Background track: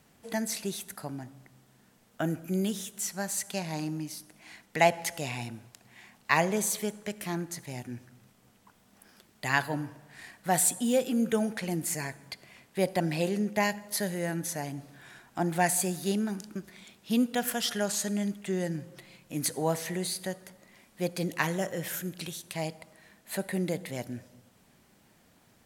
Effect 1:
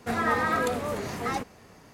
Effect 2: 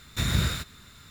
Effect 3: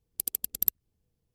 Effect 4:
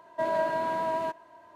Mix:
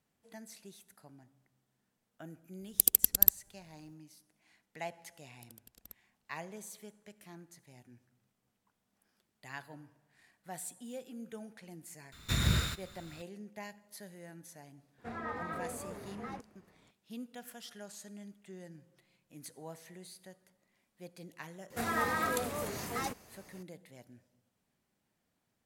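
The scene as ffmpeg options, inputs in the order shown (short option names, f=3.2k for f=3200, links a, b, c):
-filter_complex "[3:a]asplit=2[a][b];[1:a]asplit=2[c][d];[0:a]volume=-18.5dB[e];[a]alimiter=level_in=9dB:limit=-1dB:release=50:level=0:latency=1[f];[b]lowpass=f=2.5k:p=1[g];[c]aemphasis=mode=reproduction:type=75fm[h];[d]aemphasis=mode=production:type=50kf[i];[f]atrim=end=1.34,asetpts=PTS-STARTPTS,volume=-2.5dB,afade=t=in:d=0.004:c=hsin,afade=t=out:st=1.336:d=0.004:c=hsin,adelay=2600[j];[g]atrim=end=1.34,asetpts=PTS-STARTPTS,volume=-15dB,afade=t=in:d=0.004:c=hsin,afade=t=out:st=1.336:d=0.004:c=hsin,adelay=5230[k];[2:a]atrim=end=1.1,asetpts=PTS-STARTPTS,volume=-4dB,afade=t=in:d=0.004:c=hsin,afade=t=out:st=1.096:d=0.004:c=hsin,adelay=12120[l];[h]atrim=end=1.93,asetpts=PTS-STARTPTS,volume=-14.5dB,afade=t=in:d=0.004:c=hsin,afade=t=out:st=1.926:d=0.004:c=hsin,adelay=14980[m];[i]atrim=end=1.93,asetpts=PTS-STARTPTS,volume=-7.5dB,afade=t=in:d=0.004:c=hsin,afade=t=out:st=1.926:d=0.004:c=hsin,adelay=21700[n];[e][j][k][l][m][n]amix=inputs=6:normalize=0"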